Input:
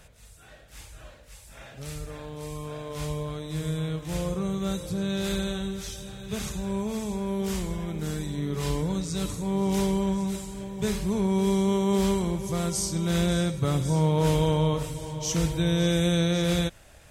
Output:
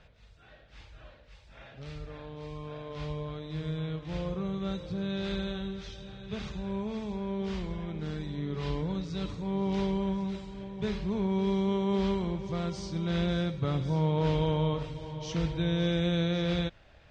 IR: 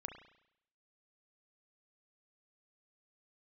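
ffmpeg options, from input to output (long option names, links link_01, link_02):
-af "lowpass=frequency=4400:width=0.5412,lowpass=frequency=4400:width=1.3066,volume=-4.5dB"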